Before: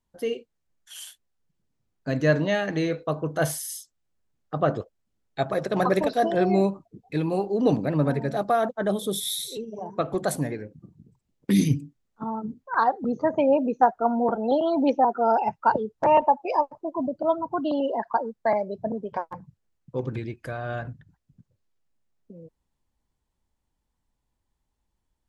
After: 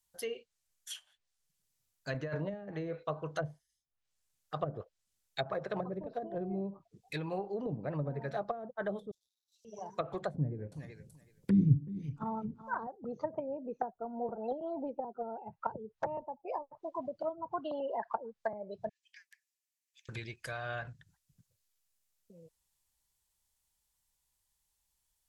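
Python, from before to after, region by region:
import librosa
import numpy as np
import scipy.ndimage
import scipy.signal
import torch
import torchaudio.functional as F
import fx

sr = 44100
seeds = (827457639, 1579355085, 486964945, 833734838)

y = fx.chain(x, sr, fx.highpass(hz=53.0, slope=12),
    fx.over_compress(threshold_db=-22.0, ratio=-0.5), at=(2.14, 2.54))
y = fx.chain(y, sr, fx.dead_time(dead_ms=0.061),
    fx.cheby2_highpass(hz=960.0, order=4, stop_db=80),
    fx.peak_eq(hz=9200.0, db=-7.0, octaves=0.28), at=(9.11, 9.65))
y = fx.chain(y, sr, fx.low_shelf(hz=400.0, db=11.0),
    fx.echo_feedback(ms=378, feedback_pct=15, wet_db=-15), at=(10.34, 12.87))
y = fx.chain(y, sr, fx.cheby_ripple_highpass(hz=1700.0, ripple_db=3),
    fx.high_shelf(hz=2400.0, db=-7.0), at=(18.89, 20.09))
y = librosa.effects.preemphasis(y, coef=0.9, zi=[0.0])
y = fx.env_lowpass_down(y, sr, base_hz=320.0, full_db=-36.0)
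y = fx.peak_eq(y, sr, hz=270.0, db=-9.0, octaves=0.79)
y = y * 10.0 ** (10.0 / 20.0)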